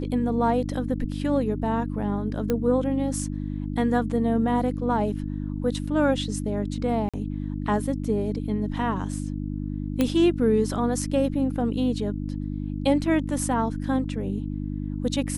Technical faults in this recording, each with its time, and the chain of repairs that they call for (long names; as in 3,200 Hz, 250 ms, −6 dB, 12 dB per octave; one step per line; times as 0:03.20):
mains hum 50 Hz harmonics 6 −30 dBFS
0:02.50: click −12 dBFS
0:07.09–0:07.14: drop-out 46 ms
0:10.01: click −10 dBFS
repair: click removal
hum removal 50 Hz, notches 6
repair the gap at 0:07.09, 46 ms